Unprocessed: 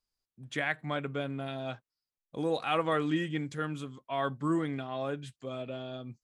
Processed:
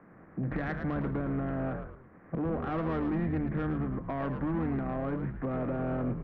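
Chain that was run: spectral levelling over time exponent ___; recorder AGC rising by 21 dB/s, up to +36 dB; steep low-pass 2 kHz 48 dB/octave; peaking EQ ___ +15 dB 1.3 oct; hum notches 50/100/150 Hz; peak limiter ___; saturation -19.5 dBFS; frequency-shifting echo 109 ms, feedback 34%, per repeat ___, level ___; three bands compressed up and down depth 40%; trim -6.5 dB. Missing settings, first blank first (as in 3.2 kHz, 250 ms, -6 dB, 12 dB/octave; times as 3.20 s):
0.6, 190 Hz, -12 dBFS, -88 Hz, -7 dB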